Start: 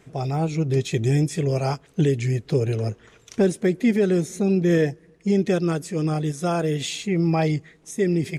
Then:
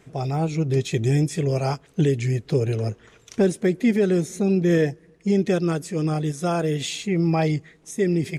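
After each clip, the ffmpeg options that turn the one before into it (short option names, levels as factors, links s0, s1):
-af anull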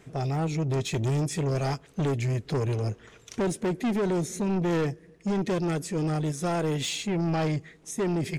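-af "asoftclip=type=tanh:threshold=0.0708"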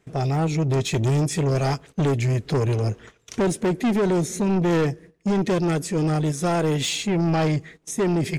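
-af "agate=range=0.178:threshold=0.00398:ratio=16:detection=peak,volume=1.88"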